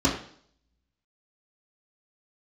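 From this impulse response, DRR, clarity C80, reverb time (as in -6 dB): -6.5 dB, 10.0 dB, 0.55 s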